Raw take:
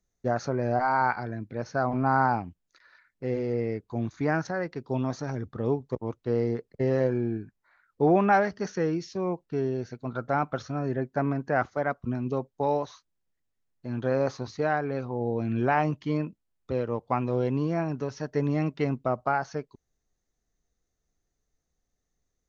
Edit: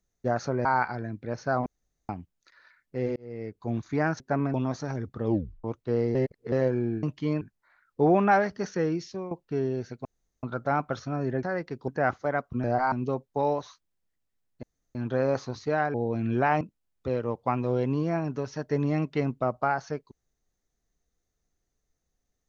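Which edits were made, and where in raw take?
0:00.65–0:00.93: move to 0:12.16
0:01.94–0:02.37: fill with room tone
0:03.44–0:03.96: fade in
0:04.48–0:04.93: swap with 0:11.06–0:11.40
0:05.65: tape stop 0.38 s
0:06.54–0:06.91: reverse
0:09.07–0:09.32: fade out, to −13 dB
0:10.06: splice in room tone 0.38 s
0:13.87: splice in room tone 0.32 s
0:14.86–0:15.20: remove
0:15.87–0:16.25: move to 0:07.42

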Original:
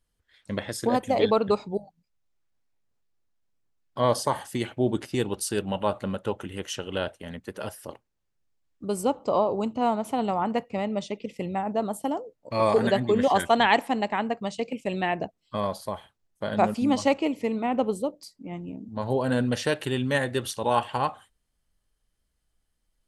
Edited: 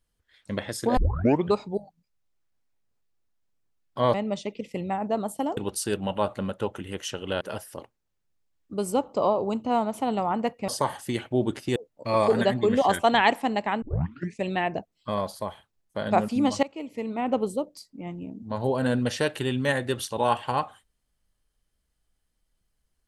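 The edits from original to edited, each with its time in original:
0:00.97: tape start 0.55 s
0:04.14–0:05.22: swap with 0:10.79–0:12.22
0:07.06–0:07.52: remove
0:14.28: tape start 0.61 s
0:17.09–0:17.81: fade in, from −20 dB

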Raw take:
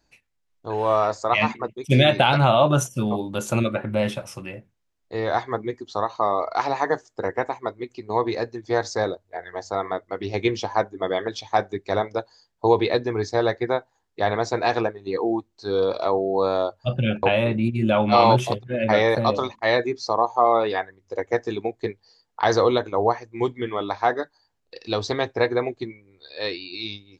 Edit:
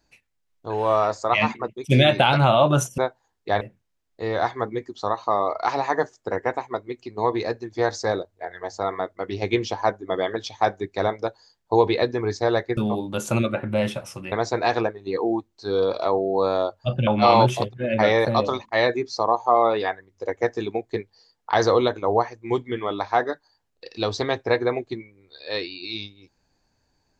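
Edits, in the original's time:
0:02.98–0:04.53: swap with 0:13.69–0:14.32
0:17.07–0:17.97: remove

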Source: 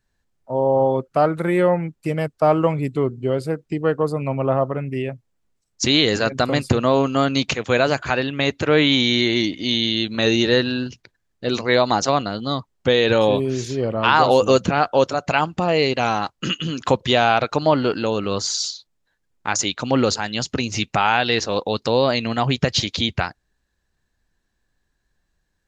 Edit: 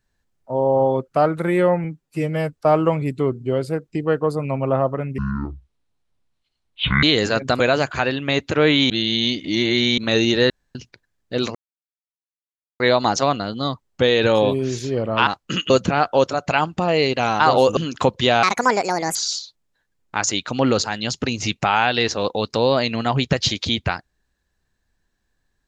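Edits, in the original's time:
0:01.84–0:02.30: time-stretch 1.5×
0:04.95–0:05.93: play speed 53%
0:06.50–0:07.71: remove
0:09.01–0:10.09: reverse
0:10.61–0:10.86: fill with room tone
0:11.66: splice in silence 1.25 s
0:14.13–0:14.50: swap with 0:16.20–0:16.63
0:17.29–0:18.47: play speed 163%

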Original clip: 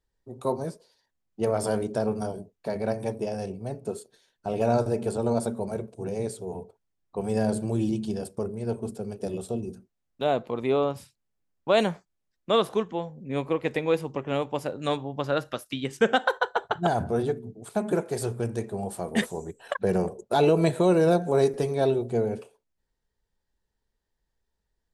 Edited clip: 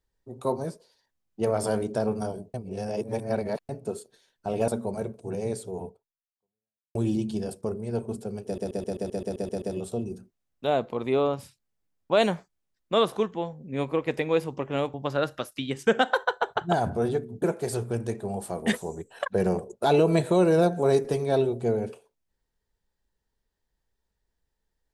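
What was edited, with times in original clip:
0:02.54–0:03.69: reverse
0:04.68–0:05.42: remove
0:06.60–0:07.69: fade out exponential
0:09.19: stutter 0.13 s, 10 plays
0:14.51–0:15.08: remove
0:17.56–0:17.91: remove

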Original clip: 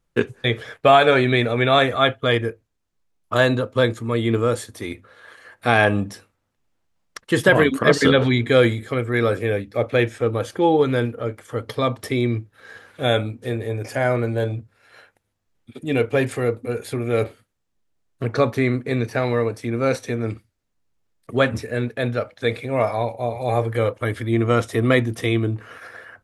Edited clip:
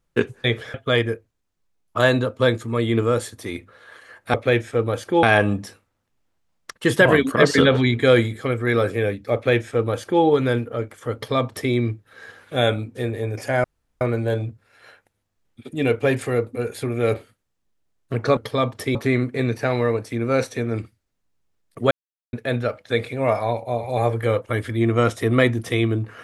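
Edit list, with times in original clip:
0:00.74–0:02.10: remove
0:09.81–0:10.70: duplicate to 0:05.70
0:11.61–0:12.19: duplicate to 0:18.47
0:14.11: splice in room tone 0.37 s
0:21.43–0:21.85: silence

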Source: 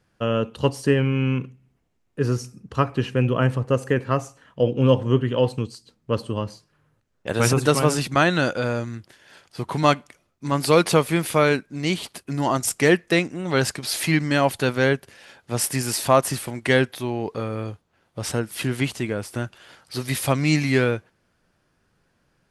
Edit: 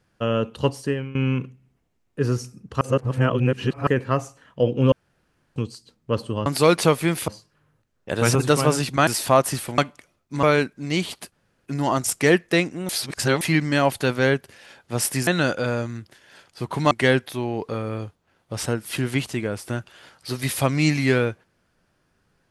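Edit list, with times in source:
0:00.61–0:01.15: fade out, to −17.5 dB
0:02.81–0:03.87: reverse
0:04.92–0:05.56: fill with room tone
0:08.25–0:09.89: swap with 0:15.86–0:16.57
0:10.54–0:11.36: move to 0:06.46
0:12.25: splice in room tone 0.34 s
0:13.48–0:14.00: reverse

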